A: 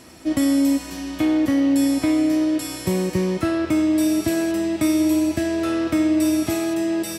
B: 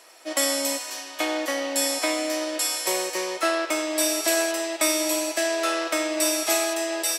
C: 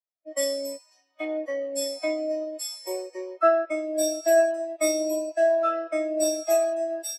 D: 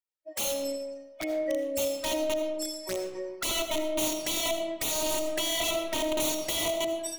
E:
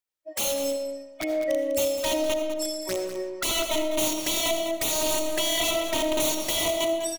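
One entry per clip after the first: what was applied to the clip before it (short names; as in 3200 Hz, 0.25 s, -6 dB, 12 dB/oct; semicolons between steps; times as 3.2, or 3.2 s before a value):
dynamic EQ 6800 Hz, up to +5 dB, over -44 dBFS, Q 0.76; HPF 510 Hz 24 dB/oct; upward expander 1.5:1, over -42 dBFS; gain +6 dB
bell 140 Hz -5.5 dB 0.84 oct; spectral expander 2.5:1
wrapped overs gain 22 dB; envelope flanger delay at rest 2.2 ms, full sweep at -26.5 dBFS; digital reverb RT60 1.2 s, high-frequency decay 0.55×, pre-delay 40 ms, DRR 6 dB
echo 0.2 s -11 dB; gain +3.5 dB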